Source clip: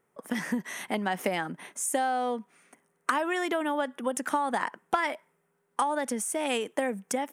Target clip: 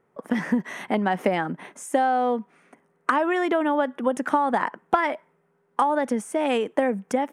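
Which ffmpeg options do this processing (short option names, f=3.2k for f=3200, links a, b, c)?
-af "lowpass=f=1.4k:p=1,volume=7.5dB"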